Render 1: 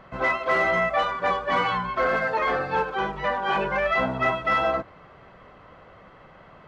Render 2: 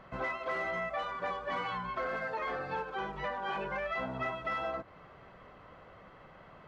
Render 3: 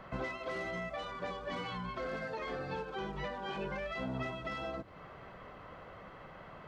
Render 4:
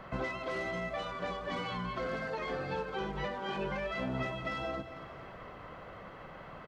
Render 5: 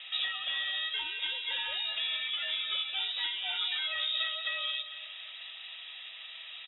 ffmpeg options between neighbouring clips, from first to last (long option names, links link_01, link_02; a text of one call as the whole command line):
ffmpeg -i in.wav -af "acompressor=threshold=-30dB:ratio=3,volume=-5dB" out.wav
ffmpeg -i in.wav -filter_complex "[0:a]acrossover=split=450|3000[link_01][link_02][link_03];[link_02]acompressor=threshold=-48dB:ratio=4[link_04];[link_01][link_04][link_03]amix=inputs=3:normalize=0,volume=3.5dB" out.wav
ffmpeg -i in.wav -af "aecho=1:1:225|450|675|900|1125:0.237|0.123|0.0641|0.0333|0.0173,volume=2.5dB" out.wav
ffmpeg -i in.wav -af "lowpass=frequency=3300:width_type=q:width=0.5098,lowpass=frequency=3300:width_type=q:width=0.6013,lowpass=frequency=3300:width_type=q:width=0.9,lowpass=frequency=3300:width_type=q:width=2.563,afreqshift=-3900,volume=2.5dB" out.wav